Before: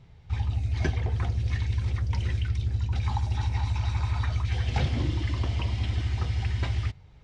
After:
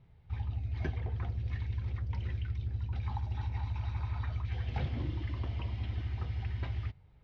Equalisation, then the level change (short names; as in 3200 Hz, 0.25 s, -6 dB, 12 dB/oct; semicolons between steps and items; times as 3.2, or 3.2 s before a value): air absorption 220 m; -8.0 dB